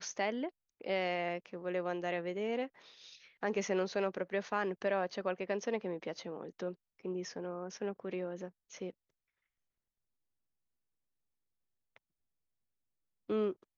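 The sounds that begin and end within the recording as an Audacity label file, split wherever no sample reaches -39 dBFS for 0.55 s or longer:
3.430000	8.900000	sound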